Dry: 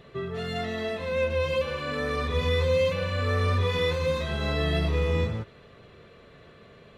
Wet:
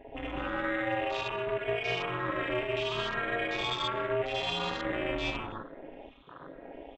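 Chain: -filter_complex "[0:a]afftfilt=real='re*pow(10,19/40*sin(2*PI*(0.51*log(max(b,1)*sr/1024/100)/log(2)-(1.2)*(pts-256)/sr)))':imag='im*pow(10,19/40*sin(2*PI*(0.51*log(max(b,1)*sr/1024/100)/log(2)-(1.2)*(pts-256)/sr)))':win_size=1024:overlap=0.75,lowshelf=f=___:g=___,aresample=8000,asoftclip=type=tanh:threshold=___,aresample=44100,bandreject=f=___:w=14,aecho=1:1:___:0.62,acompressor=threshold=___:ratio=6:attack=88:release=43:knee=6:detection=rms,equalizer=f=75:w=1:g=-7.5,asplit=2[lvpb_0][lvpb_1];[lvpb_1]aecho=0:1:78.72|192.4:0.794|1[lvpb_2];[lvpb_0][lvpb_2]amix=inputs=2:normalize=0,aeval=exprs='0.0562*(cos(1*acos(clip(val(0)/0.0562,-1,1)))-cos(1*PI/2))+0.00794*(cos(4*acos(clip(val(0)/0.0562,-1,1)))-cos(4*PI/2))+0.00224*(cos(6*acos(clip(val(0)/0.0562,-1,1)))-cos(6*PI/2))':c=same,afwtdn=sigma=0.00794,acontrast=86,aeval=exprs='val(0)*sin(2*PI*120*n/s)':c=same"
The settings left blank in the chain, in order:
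410, -11.5, -22dB, 2.2k, 7.3, -44dB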